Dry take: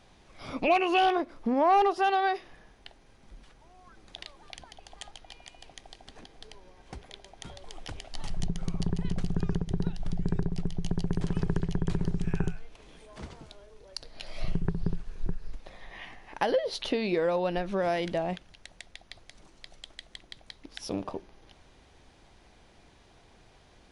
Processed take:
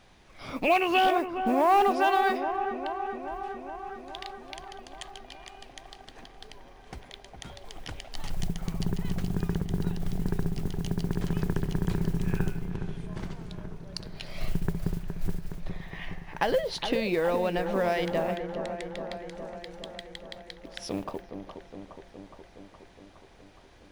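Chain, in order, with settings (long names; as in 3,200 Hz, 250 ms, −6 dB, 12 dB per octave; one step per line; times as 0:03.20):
noise that follows the level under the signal 28 dB
parametric band 1,900 Hz +3 dB 1.4 octaves
on a send: delay with a low-pass on its return 416 ms, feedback 70%, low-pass 1,500 Hz, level −7.5 dB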